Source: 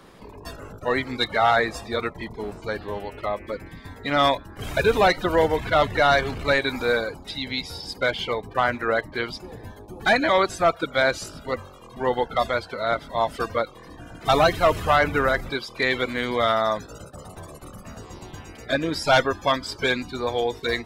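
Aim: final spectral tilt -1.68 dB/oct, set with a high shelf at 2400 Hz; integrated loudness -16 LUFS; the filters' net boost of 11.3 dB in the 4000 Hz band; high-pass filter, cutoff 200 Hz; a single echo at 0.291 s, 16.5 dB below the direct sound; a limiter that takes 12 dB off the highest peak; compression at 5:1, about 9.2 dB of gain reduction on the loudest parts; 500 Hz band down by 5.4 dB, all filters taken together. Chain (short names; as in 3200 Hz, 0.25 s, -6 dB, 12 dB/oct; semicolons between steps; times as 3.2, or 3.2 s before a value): HPF 200 Hz; bell 500 Hz -7.5 dB; high shelf 2400 Hz +5.5 dB; bell 4000 Hz +8.5 dB; compressor 5:1, threshold -20 dBFS; limiter -19 dBFS; echo 0.291 s -16.5 dB; gain +14 dB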